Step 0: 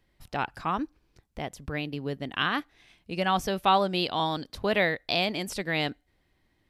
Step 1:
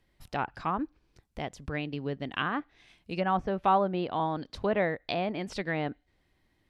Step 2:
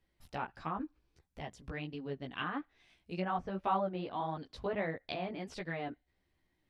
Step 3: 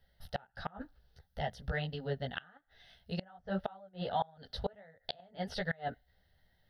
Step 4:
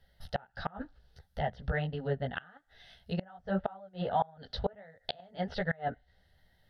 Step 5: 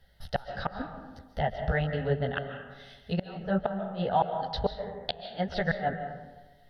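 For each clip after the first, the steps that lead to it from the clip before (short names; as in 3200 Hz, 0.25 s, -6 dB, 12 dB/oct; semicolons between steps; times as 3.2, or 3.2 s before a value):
treble ducked by the level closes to 1400 Hz, closed at -24 dBFS; gain -1 dB
chorus voices 2, 1.5 Hz, delay 14 ms, depth 3 ms; gain -4.5 dB
fixed phaser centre 1600 Hz, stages 8; flipped gate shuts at -31 dBFS, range -28 dB; gain +9.5 dB
treble ducked by the level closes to 2100 Hz, closed at -35 dBFS; gain +4 dB
reverb RT60 1.2 s, pre-delay 0.105 s, DRR 7 dB; gain +4 dB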